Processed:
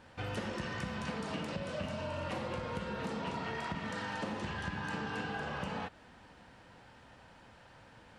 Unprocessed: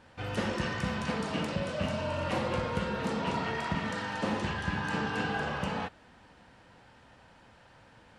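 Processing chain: compressor, threshold -35 dBFS, peak gain reduction 9 dB

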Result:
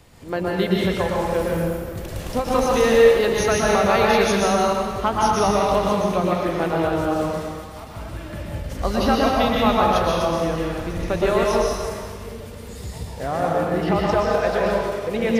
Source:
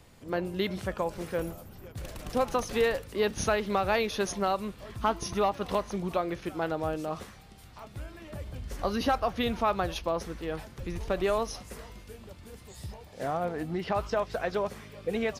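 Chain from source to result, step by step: plate-style reverb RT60 1.8 s, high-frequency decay 0.8×, pre-delay 0.105 s, DRR -4 dB; ending taper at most 180 dB/s; gain +5 dB

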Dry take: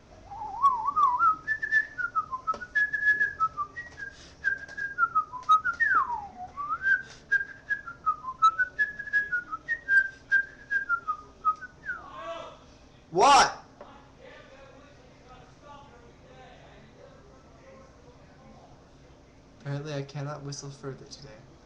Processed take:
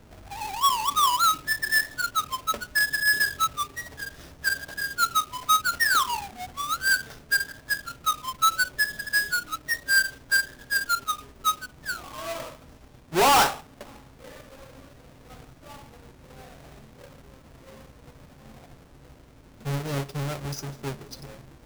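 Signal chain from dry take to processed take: half-waves squared off; sample leveller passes 1; gain -3.5 dB

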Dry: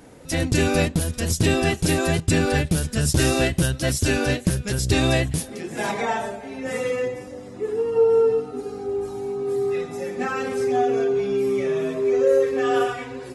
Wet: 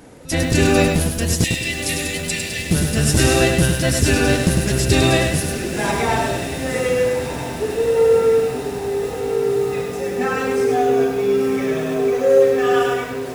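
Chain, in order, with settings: 1.44–2.71 Chebyshev high-pass 1800 Hz, order 10; on a send: diffused feedback echo 1.335 s, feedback 60%, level -10.5 dB; on the sum: lo-fi delay 0.102 s, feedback 35%, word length 7-bit, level -4 dB; gain +3.5 dB

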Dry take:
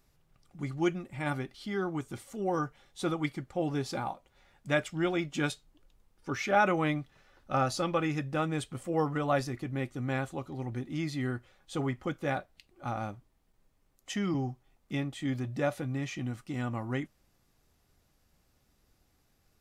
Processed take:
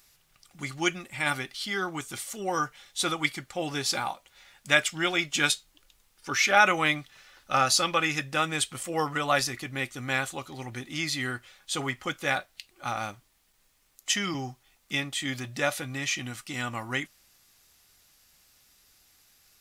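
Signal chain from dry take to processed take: tilt shelf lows -10 dB, about 1100 Hz; gain +6 dB

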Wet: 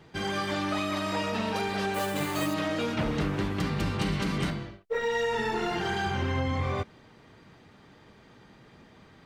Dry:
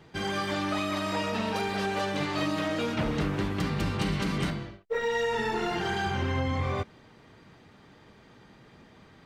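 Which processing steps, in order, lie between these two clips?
1.94–2.54 sample-rate reducer 11000 Hz, jitter 0%

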